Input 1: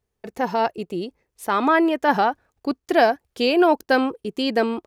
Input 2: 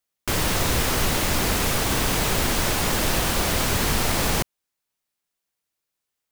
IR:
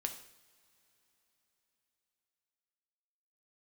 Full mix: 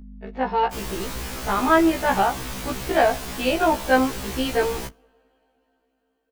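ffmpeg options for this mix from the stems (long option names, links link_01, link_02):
-filter_complex "[0:a]lowpass=frequency=3700:width=0.5412,lowpass=frequency=3700:width=1.3066,lowshelf=frequency=250:gain=-5,aeval=exprs='val(0)+0.0141*(sin(2*PI*50*n/s)+sin(2*PI*2*50*n/s)/2+sin(2*PI*3*50*n/s)/3+sin(2*PI*4*50*n/s)/4+sin(2*PI*5*50*n/s)/5)':channel_layout=same,volume=0dB,asplit=2[link_01][link_02];[link_02]volume=-10.5dB[link_03];[1:a]adelay=450,volume=-8.5dB,asplit=2[link_04][link_05];[link_05]volume=-23dB[link_06];[2:a]atrim=start_sample=2205[link_07];[link_03][link_06]amix=inputs=2:normalize=0[link_08];[link_08][link_07]afir=irnorm=-1:irlink=0[link_09];[link_01][link_04][link_09]amix=inputs=3:normalize=0,asoftclip=type=tanh:threshold=-4.5dB,afftfilt=real='re*1.73*eq(mod(b,3),0)':imag='im*1.73*eq(mod(b,3),0)':win_size=2048:overlap=0.75"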